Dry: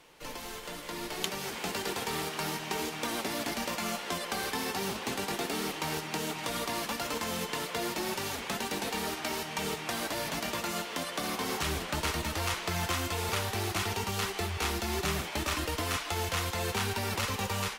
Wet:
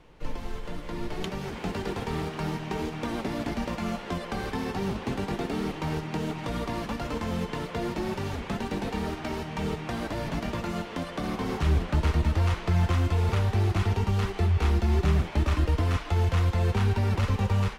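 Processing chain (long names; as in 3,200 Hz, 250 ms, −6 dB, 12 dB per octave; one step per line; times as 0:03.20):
RIAA equalisation playback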